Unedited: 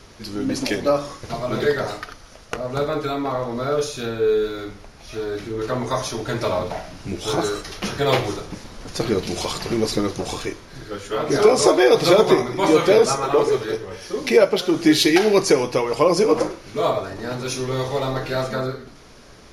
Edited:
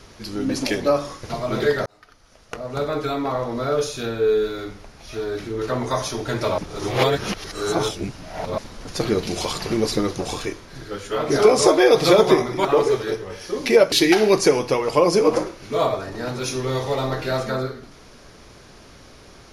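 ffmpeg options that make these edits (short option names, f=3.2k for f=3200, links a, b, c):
-filter_complex "[0:a]asplit=6[a][b][c][d][e][f];[a]atrim=end=1.86,asetpts=PTS-STARTPTS,afade=t=out:st=1.856:d=0.004:c=hsin[g];[b]atrim=start=1.86:end=6.582,asetpts=PTS-STARTPTS,afade=t=in:d=1.2[h];[c]atrim=start=6.578:end=8.582,asetpts=PTS-STARTPTS,areverse[i];[d]atrim=start=8.578:end=12.652[j];[e]atrim=start=13.258:end=14.532[k];[f]atrim=start=14.958[l];[g][h]concat=n=2:v=0:a=1[m];[m][i]acrossfade=d=0.004:c1=hsin:c2=hsin[n];[n][j]acrossfade=d=0.004:c1=hsin:c2=hsin[o];[o][k]acrossfade=d=0.004:c1=hsin:c2=hsin[p];[p][l]acrossfade=d=0.004:c1=hsin:c2=hsin"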